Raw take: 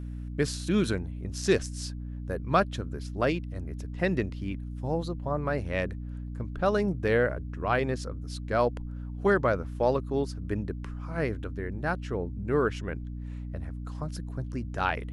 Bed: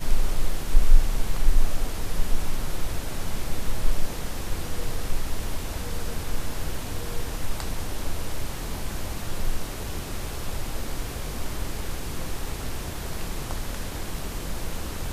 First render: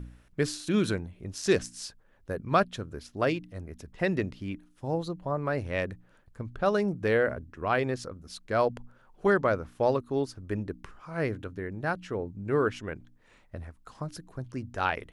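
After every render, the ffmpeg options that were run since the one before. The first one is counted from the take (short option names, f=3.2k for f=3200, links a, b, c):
-af "bandreject=f=60:t=h:w=4,bandreject=f=120:t=h:w=4,bandreject=f=180:t=h:w=4,bandreject=f=240:t=h:w=4,bandreject=f=300:t=h:w=4"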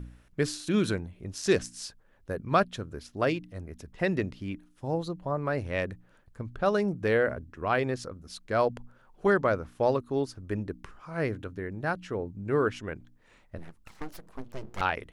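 -filter_complex "[0:a]asettb=1/sr,asplit=3[a][b][c];[a]atrim=end=13.584[d];[b]atrim=start=13.58:end=14.81,asetpts=PTS-STARTPTS,afade=t=in:d=0.004:c=qsin,afade=t=out:st=1.226:d=0.004:c=qsin,aeval=exprs='abs(val(0))':c=same[e];[c]atrim=start=14.806[f];[d][e]acrossfade=d=0.004:c1=hsin:c2=qsin[g];[g][f]acrossfade=d=0.004:c1=qsin:c2=hsin"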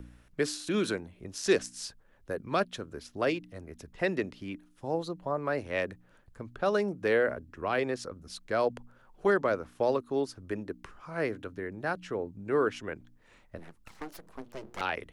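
-filter_complex "[0:a]acrossover=split=220|510|2100[a][b][c][d];[a]acompressor=threshold=-47dB:ratio=6[e];[c]alimiter=limit=-23dB:level=0:latency=1[f];[e][b][f][d]amix=inputs=4:normalize=0"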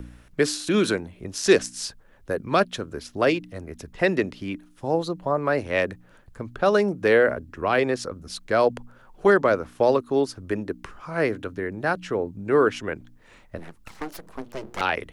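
-af "volume=8dB"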